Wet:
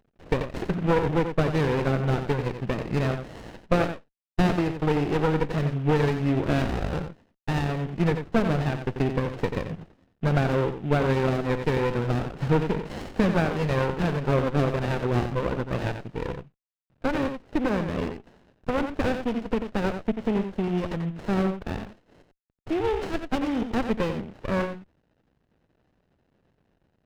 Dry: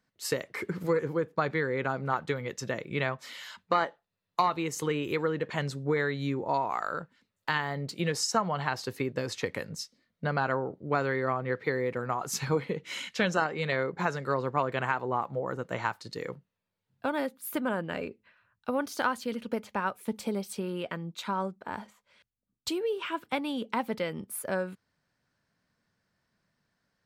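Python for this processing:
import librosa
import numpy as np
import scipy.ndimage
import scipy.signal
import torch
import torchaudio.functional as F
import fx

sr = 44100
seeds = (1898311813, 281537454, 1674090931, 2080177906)

y = fx.cvsd(x, sr, bps=16000)
y = y + 10.0 ** (-8.0 / 20.0) * np.pad(y, (int(89 * sr / 1000.0), 0))[:len(y)]
y = fx.running_max(y, sr, window=33)
y = y * librosa.db_to_amplitude(7.5)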